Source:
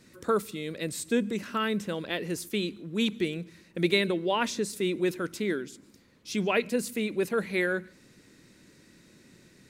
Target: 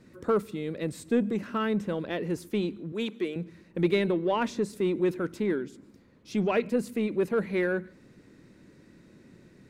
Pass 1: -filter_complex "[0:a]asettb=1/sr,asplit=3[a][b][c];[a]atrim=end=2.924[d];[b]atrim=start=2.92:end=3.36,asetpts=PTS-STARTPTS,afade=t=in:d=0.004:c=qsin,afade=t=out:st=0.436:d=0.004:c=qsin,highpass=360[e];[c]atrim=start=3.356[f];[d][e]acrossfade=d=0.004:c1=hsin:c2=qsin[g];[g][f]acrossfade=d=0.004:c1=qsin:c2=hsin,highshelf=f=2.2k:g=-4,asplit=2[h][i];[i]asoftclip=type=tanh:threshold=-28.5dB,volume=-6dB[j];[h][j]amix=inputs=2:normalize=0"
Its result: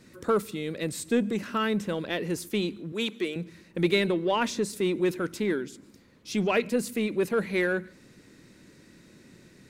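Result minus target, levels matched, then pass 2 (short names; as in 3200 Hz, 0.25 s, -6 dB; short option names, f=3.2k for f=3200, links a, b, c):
4000 Hz band +6.0 dB
-filter_complex "[0:a]asettb=1/sr,asplit=3[a][b][c];[a]atrim=end=2.924[d];[b]atrim=start=2.92:end=3.36,asetpts=PTS-STARTPTS,afade=t=in:d=0.004:c=qsin,afade=t=out:st=0.436:d=0.004:c=qsin,highpass=360[e];[c]atrim=start=3.356[f];[d][e]acrossfade=d=0.004:c1=hsin:c2=qsin[g];[g][f]acrossfade=d=0.004:c1=qsin:c2=hsin,highshelf=f=2.2k:g=-14.5,asplit=2[h][i];[i]asoftclip=type=tanh:threshold=-28.5dB,volume=-6dB[j];[h][j]amix=inputs=2:normalize=0"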